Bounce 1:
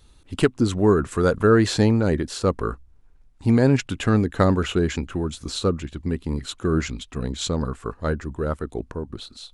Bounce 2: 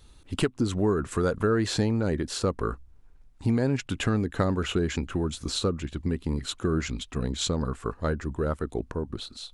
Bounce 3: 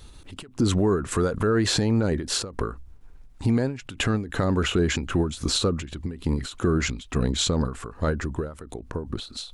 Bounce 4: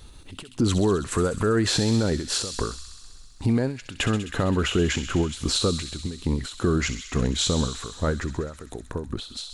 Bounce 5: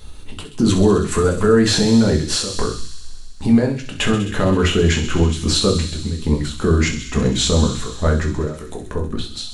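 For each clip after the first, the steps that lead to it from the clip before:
compressor 2.5:1, threshold -24 dBFS, peak gain reduction 9 dB
limiter -21.5 dBFS, peak gain reduction 9.5 dB; ending taper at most 120 dB/s; gain +8 dB
thin delay 65 ms, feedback 81%, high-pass 2900 Hz, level -8.5 dB
shoebox room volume 160 m³, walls furnished, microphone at 1.4 m; gain +3.5 dB

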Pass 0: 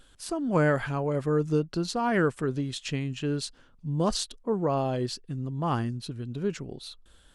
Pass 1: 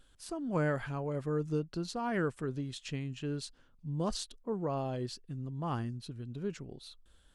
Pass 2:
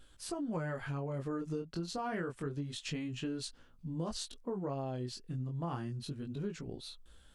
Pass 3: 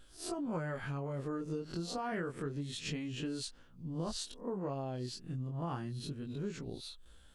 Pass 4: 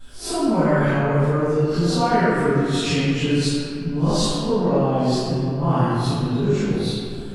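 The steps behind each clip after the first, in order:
low shelf 150 Hz +3.5 dB; gain -8.5 dB
chorus 0.28 Hz, delay 16.5 ms, depth 7.6 ms; compressor 6:1, threshold -41 dBFS, peak gain reduction 11.5 dB; gain +6.5 dB
spectral swells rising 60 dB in 0.32 s; gain -1 dB
reverb RT60 2.4 s, pre-delay 3 ms, DRR -17 dB

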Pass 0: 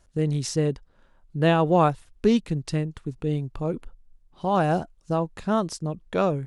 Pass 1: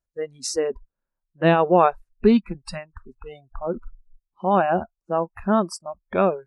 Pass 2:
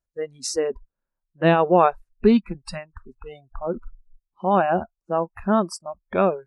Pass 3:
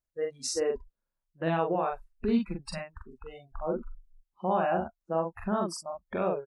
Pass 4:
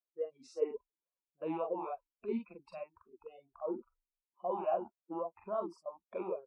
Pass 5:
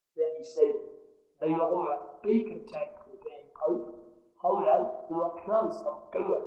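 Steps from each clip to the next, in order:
spectral noise reduction 30 dB; bell 3300 Hz -12 dB 0.25 oct; gain +4 dB
nothing audible
limiter -15.5 dBFS, peak gain reduction 11 dB; doubler 43 ms -2.5 dB; gain -5.5 dB
wow and flutter 29 cents; vowel sweep a-u 3.6 Hz; gain +1.5 dB
on a send at -9 dB: reverb RT60 1.0 s, pre-delay 4 ms; on the sum: gain +8.5 dB; Opus 16 kbps 48000 Hz

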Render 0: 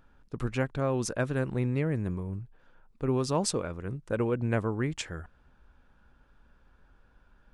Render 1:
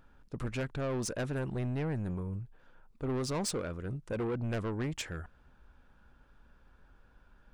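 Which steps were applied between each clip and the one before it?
soft clip -29.5 dBFS, distortion -8 dB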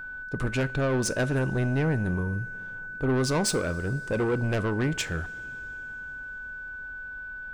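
whine 1500 Hz -44 dBFS; two-slope reverb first 0.31 s, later 4.2 s, from -18 dB, DRR 13.5 dB; gain +8 dB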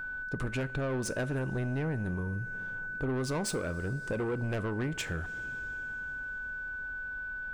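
dynamic EQ 5200 Hz, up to -4 dB, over -45 dBFS, Q 0.96; compressor 3:1, threshold -32 dBFS, peak gain reduction 7.5 dB

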